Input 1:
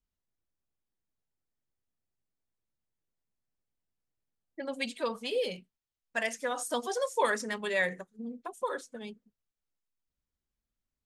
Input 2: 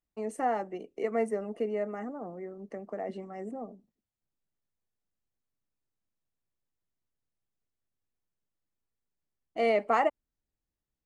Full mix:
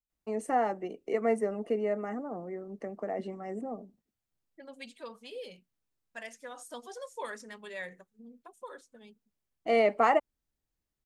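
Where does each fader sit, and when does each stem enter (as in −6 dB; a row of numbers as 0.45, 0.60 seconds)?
−11.5, +1.5 decibels; 0.00, 0.10 seconds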